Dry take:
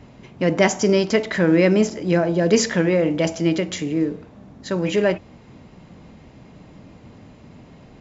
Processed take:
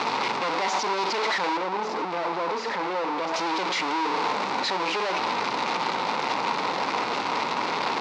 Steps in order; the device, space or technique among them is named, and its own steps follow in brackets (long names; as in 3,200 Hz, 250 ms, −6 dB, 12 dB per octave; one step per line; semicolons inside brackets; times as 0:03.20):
home computer beeper (sign of each sample alone; loudspeaker in its box 600–4,500 Hz, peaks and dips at 630 Hz −7 dB, 930 Hz +7 dB, 1,700 Hz −7 dB, 3,100 Hz −7 dB)
0:01.57–0:03.34: high-shelf EQ 2,200 Hz −10 dB
level +1.5 dB